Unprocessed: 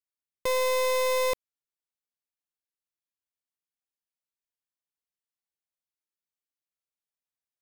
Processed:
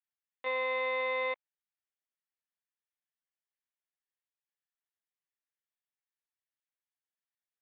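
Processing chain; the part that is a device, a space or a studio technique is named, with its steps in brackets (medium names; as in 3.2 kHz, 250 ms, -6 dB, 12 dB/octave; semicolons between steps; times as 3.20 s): talking toy (LPC vocoder at 8 kHz pitch kept; high-pass 620 Hz 12 dB/octave; peaking EQ 1.8 kHz +8 dB 0.38 oct); trim -4 dB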